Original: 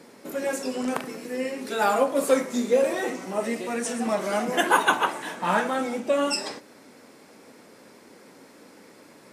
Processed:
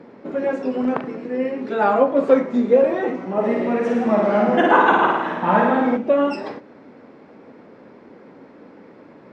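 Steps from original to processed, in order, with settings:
head-to-tape spacing loss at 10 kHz 44 dB
0:03.32–0:05.97: flutter between parallel walls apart 9.3 metres, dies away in 1.1 s
level +8.5 dB

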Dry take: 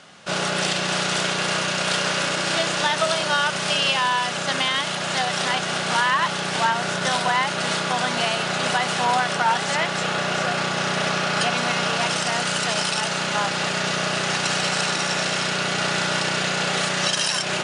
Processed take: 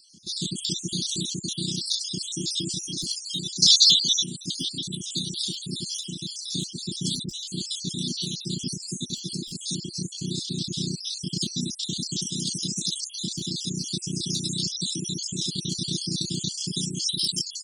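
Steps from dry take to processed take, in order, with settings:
time-frequency cells dropped at random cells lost 57%
gain into a clipping stage and back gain 14 dB
0:03.62–0:04.24: flat-topped bell 4,700 Hz +14.5 dB 1.3 octaves
reverb reduction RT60 0.91 s
Chebyshev band-stop filter 350–3,500 Hz, order 5
level +3.5 dB

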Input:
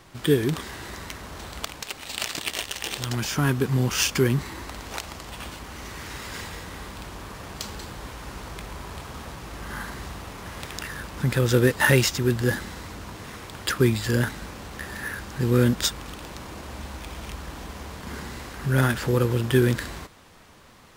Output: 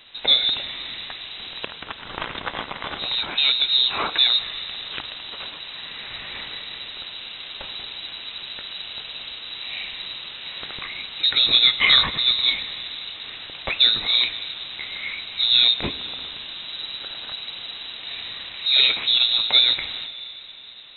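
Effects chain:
on a send at −12.5 dB: convolution reverb RT60 3.8 s, pre-delay 15 ms
on the sum: voice inversion scrambler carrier 3,900 Hz
level +2 dB

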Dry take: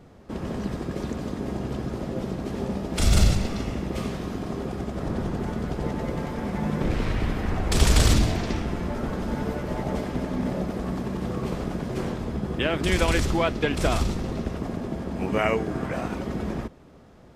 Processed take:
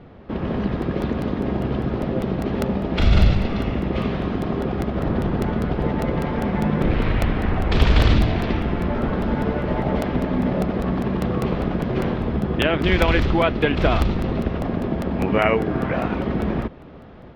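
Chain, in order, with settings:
automatic gain control gain up to 3 dB
low-pass filter 3,600 Hz 24 dB per octave
in parallel at 0 dB: downward compressor, threshold −28 dBFS, peak gain reduction 16.5 dB
on the sum: regular buffer underruns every 0.20 s, samples 64, repeat, from 0:00.82

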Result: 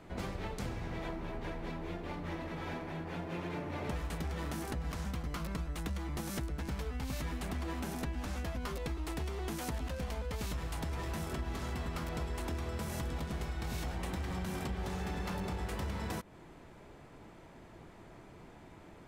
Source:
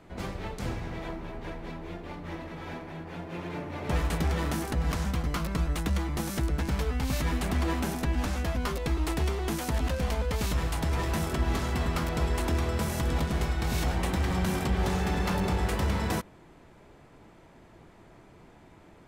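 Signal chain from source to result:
downward compressor, threshold −35 dBFS, peak gain reduction 12 dB

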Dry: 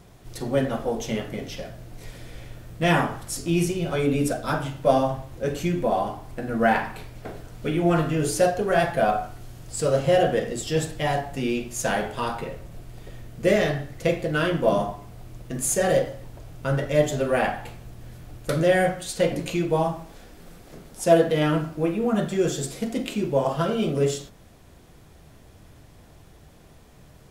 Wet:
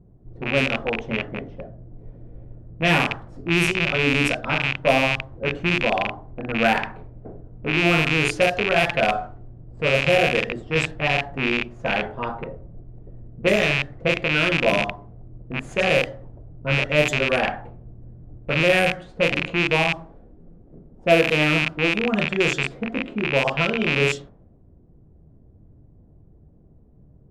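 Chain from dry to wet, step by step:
loose part that buzzes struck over −31 dBFS, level −9 dBFS
low-pass that shuts in the quiet parts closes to 320 Hz, open at −14 dBFS

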